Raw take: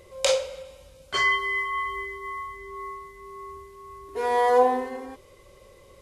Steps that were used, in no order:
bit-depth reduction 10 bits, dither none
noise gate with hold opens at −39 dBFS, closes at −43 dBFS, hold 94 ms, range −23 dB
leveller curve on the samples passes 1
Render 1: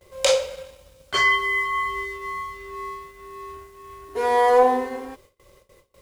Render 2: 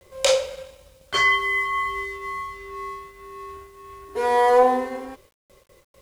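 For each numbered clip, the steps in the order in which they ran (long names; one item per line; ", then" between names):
bit-depth reduction, then leveller curve on the samples, then noise gate with hold
leveller curve on the samples, then noise gate with hold, then bit-depth reduction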